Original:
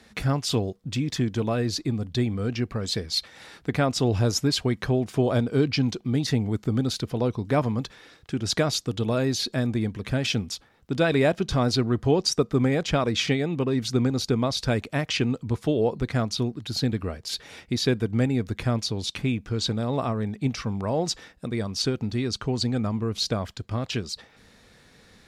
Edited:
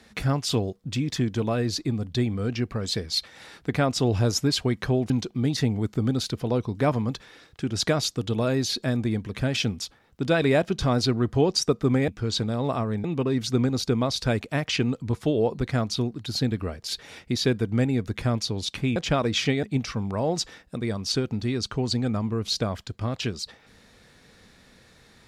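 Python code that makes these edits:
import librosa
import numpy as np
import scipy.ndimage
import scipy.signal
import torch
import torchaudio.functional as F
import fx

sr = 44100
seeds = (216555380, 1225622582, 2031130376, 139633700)

y = fx.edit(x, sr, fx.cut(start_s=5.1, length_s=0.7),
    fx.swap(start_s=12.78, length_s=0.67, other_s=19.37, other_length_s=0.96), tone=tone)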